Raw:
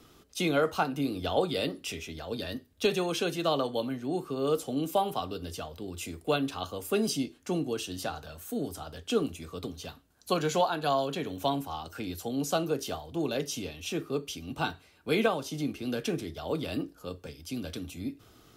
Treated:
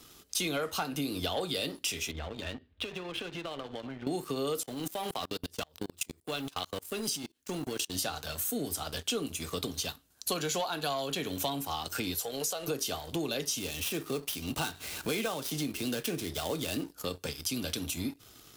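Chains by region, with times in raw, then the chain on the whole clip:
2.11–4.07 inverse Chebyshev low-pass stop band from 11000 Hz, stop band 70 dB + compressor 10:1, threshold -42 dBFS + bell 71 Hz +14 dB 0.4 oct
4.63–7.95 G.711 law mismatch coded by A + level quantiser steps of 20 dB
12.15–12.68 resonant low shelf 370 Hz -6.5 dB, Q 3 + compressor 3:1, threshold -37 dBFS
13.58–16.92 switching dead time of 0.065 ms + upward compressor, threshold -35 dBFS
whole clip: high shelf 2600 Hz +12 dB; sample leveller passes 2; compressor 6:1, threshold -31 dBFS

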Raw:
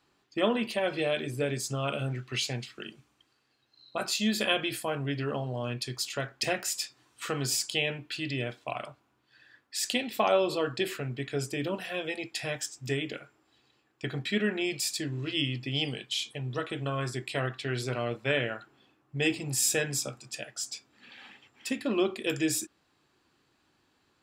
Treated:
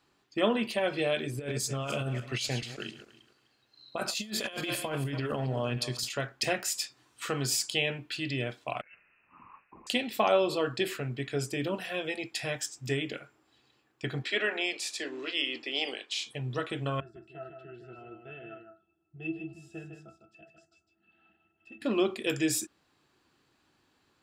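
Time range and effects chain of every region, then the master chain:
1.35–6.09 regenerating reverse delay 0.142 s, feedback 41%, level -12.5 dB + negative-ratio compressor -32 dBFS, ratio -0.5
8.81–9.87 inverted band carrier 2800 Hz + negative-ratio compressor -54 dBFS
14.22–16.25 spectral limiter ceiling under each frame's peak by 12 dB + HPF 310 Hz 24 dB/oct + air absorption 64 m
17–21.82 octave resonator E, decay 0.14 s + echo 0.154 s -7 dB
whole clip: dry

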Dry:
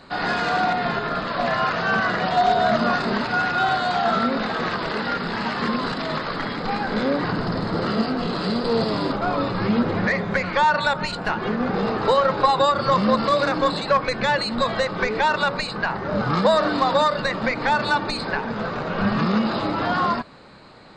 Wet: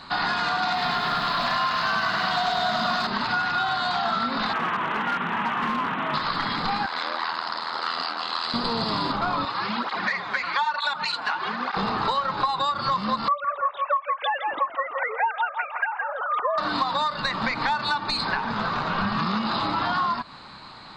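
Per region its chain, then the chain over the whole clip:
0.62–3.07 high shelf 3200 Hz +8.5 dB + lo-fi delay 0.102 s, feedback 80%, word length 8-bit, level -5.5 dB
4.53–6.14 CVSD 16 kbps + HPF 150 Hz + overloaded stage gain 21 dB
6.86–8.54 ring modulator 41 Hz + HPF 700 Hz
9.45–11.77 weighting filter A + tape flanging out of phase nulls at 1.1 Hz, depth 6.3 ms
13.28–16.58 sine-wave speech + darkening echo 0.164 s, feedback 36%, low-pass 1400 Hz, level -5 dB
whole clip: graphic EQ 500/1000/4000 Hz -9/+9/+8 dB; compressor, threshold -22 dBFS

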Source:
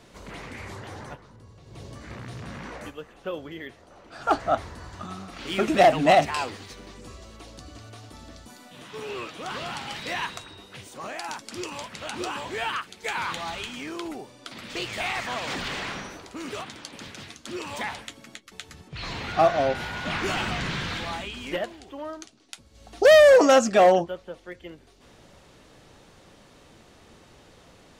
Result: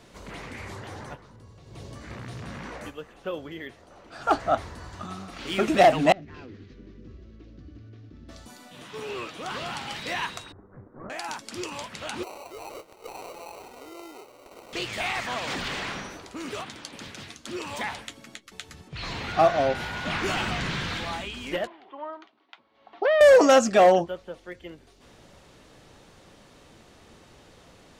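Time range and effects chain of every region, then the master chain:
6.12–8.29 CVSD 32 kbps + EQ curve 350 Hz 0 dB, 850 Hz -23 dB, 1600 Hz -12 dB, 5300 Hz -21 dB + compressor 16:1, threshold -38 dBFS
10.52–11.1 minimum comb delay 0.56 ms + inverse Chebyshev low-pass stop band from 3000 Hz, stop band 50 dB
12.23–14.73 sample-rate reducer 1700 Hz + compressor 2:1, threshold -46 dBFS + resonant low shelf 290 Hz -11 dB, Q 1.5
21.67–23.21 speaker cabinet 430–2900 Hz, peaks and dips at 490 Hz -7 dB, 1000 Hz +6 dB, 1600 Hz -3 dB, 2600 Hz -5 dB + compressor, threshold -17 dBFS
whole clip: dry

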